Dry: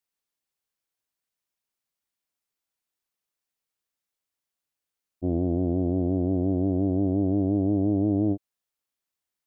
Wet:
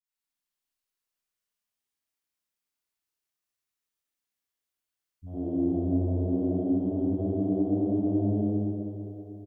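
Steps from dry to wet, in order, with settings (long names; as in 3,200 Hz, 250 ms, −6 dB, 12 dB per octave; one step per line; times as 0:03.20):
three-band delay without the direct sound lows, highs, mids 40/110 ms, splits 160/650 Hz
four-comb reverb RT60 3.4 s, combs from 26 ms, DRR −7.5 dB
every ending faded ahead of time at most 210 dB per second
level −9 dB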